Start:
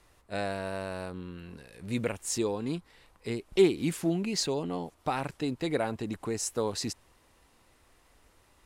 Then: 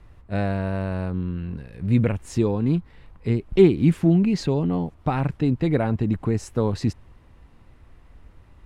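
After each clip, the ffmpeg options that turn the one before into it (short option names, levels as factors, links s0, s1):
-af "bass=f=250:g=14,treble=f=4000:g=-14,volume=1.58"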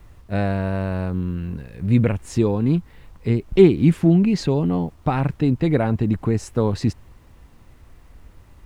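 -af "acrusher=bits=10:mix=0:aa=0.000001,volume=1.33"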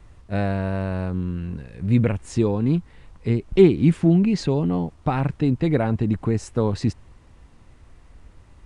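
-af "aresample=22050,aresample=44100,volume=0.841"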